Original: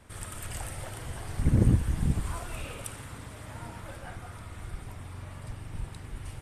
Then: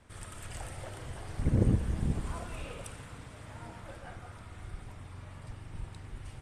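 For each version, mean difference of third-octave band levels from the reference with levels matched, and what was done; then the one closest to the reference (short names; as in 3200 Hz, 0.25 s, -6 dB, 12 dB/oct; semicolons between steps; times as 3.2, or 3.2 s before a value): 1.5 dB: LPF 8700 Hz 12 dB/oct; dynamic EQ 500 Hz, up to +5 dB, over -47 dBFS, Q 1.2; spring tank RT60 3.2 s, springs 31 ms, chirp 50 ms, DRR 12.5 dB; gain -4.5 dB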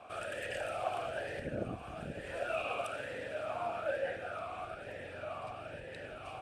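7.0 dB: compressor 2:1, threshold -36 dBFS, peak gain reduction 11 dB; vowel sweep a-e 1.1 Hz; gain +18 dB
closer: first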